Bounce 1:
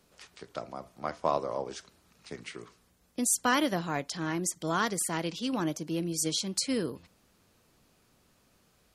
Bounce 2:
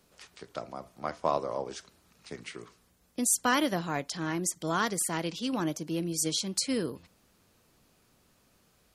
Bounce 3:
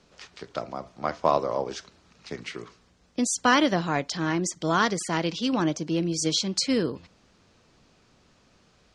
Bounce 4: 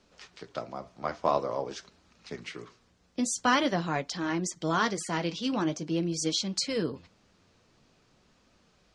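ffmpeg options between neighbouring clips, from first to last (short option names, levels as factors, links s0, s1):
-af "highshelf=f=11000:g=3"
-af "lowpass=f=6500:w=0.5412,lowpass=f=6500:w=1.3066,volume=2"
-af "flanger=delay=3:depth=8.6:regen=-54:speed=0.47:shape=triangular"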